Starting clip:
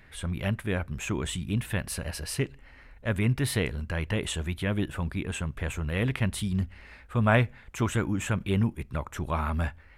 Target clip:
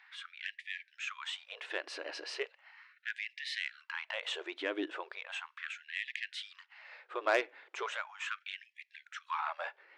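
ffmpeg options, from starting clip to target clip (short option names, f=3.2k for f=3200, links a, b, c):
-af "lowpass=f=5.2k:w=0.5412,lowpass=f=5.2k:w=1.3066,asoftclip=type=tanh:threshold=-17dB,afftfilt=real='re*gte(b*sr/1024,270*pow(1700/270,0.5+0.5*sin(2*PI*0.37*pts/sr)))':imag='im*gte(b*sr/1024,270*pow(1700/270,0.5+0.5*sin(2*PI*0.37*pts/sr)))':win_size=1024:overlap=0.75,volume=-2dB"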